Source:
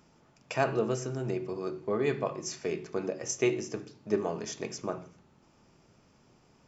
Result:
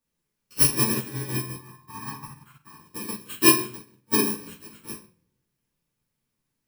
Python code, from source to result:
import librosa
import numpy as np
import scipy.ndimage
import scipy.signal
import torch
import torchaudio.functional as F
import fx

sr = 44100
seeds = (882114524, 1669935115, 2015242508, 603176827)

y = fx.bit_reversed(x, sr, seeds[0], block=64)
y = fx.curve_eq(y, sr, hz=(150.0, 530.0, 830.0, 3100.0), db=(0, -19, 8, -9), at=(1.55, 2.8))
y = fx.dmg_noise_colour(y, sr, seeds[1], colour='white', level_db=-64.0)
y = fx.room_shoebox(y, sr, seeds[2], volume_m3=180.0, walls='mixed', distance_m=2.5)
y = fx.upward_expand(y, sr, threshold_db=-39.0, expansion=2.5)
y = y * librosa.db_to_amplitude(5.5)